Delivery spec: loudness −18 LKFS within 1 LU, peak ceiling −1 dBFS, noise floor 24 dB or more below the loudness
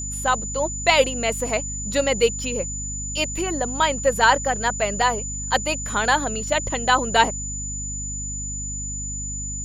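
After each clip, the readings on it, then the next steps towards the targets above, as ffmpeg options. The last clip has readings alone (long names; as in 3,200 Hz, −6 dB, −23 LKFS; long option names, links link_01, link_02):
mains hum 50 Hz; hum harmonics up to 250 Hz; level of the hum −30 dBFS; interfering tone 7,000 Hz; level of the tone −29 dBFS; integrated loudness −22.0 LKFS; sample peak −2.5 dBFS; target loudness −18.0 LKFS
→ -af "bandreject=frequency=50:width_type=h:width=6,bandreject=frequency=100:width_type=h:width=6,bandreject=frequency=150:width_type=h:width=6,bandreject=frequency=200:width_type=h:width=6,bandreject=frequency=250:width_type=h:width=6"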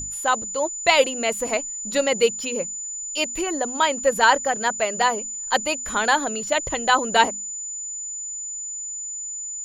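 mains hum none found; interfering tone 7,000 Hz; level of the tone −29 dBFS
→ -af "bandreject=frequency=7000:width=30"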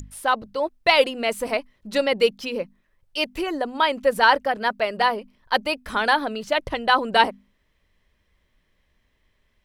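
interfering tone none found; integrated loudness −22.5 LKFS; sample peak −3.0 dBFS; target loudness −18.0 LKFS
→ -af "volume=4.5dB,alimiter=limit=-1dB:level=0:latency=1"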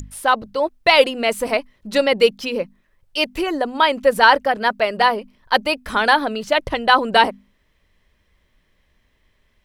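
integrated loudness −18.0 LKFS; sample peak −1.0 dBFS; background noise floor −64 dBFS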